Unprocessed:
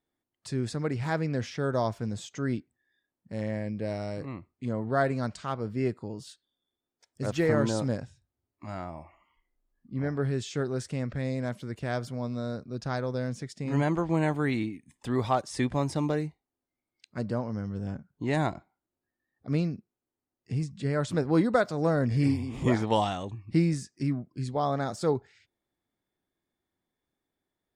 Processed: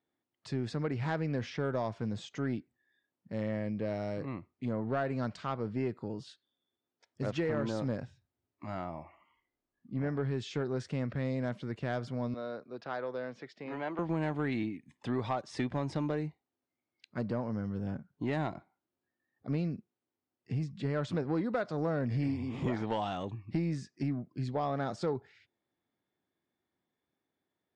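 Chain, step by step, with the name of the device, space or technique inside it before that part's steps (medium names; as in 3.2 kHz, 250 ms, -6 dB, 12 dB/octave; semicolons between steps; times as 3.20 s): AM radio (band-pass 100–4100 Hz; compression 4:1, threshold -28 dBFS, peak gain reduction 9 dB; saturation -22 dBFS, distortion -22 dB); 12.34–13.99 s: three-band isolator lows -18 dB, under 330 Hz, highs -18 dB, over 4.5 kHz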